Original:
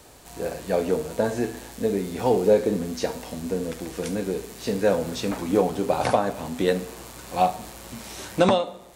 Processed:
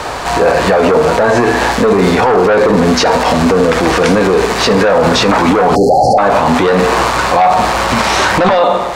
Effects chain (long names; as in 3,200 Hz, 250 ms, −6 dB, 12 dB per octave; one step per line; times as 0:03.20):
soft clipping −20.5 dBFS, distortion −9 dB
drawn EQ curve 290 Hz 0 dB, 1,100 Hz +13 dB, 3,400 Hz +4 dB, 4,800 Hz +4 dB, 14,000 Hz −10 dB
time-frequency box erased 0:05.75–0:06.18, 850–4,100 Hz
high-shelf EQ 7,200 Hz −5.5 dB
boost into a limiter +25 dB
level −1 dB